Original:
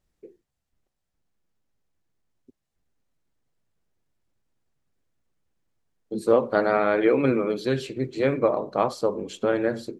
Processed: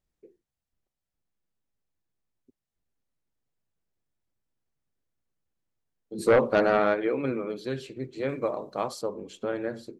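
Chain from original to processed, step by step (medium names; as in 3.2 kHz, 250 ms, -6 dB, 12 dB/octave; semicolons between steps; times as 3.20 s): 6.18–6.93 s: sine folder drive 8 dB -> 3 dB, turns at -6 dBFS; 8.29–9.02 s: treble shelf 4 kHz +11 dB; trim -7.5 dB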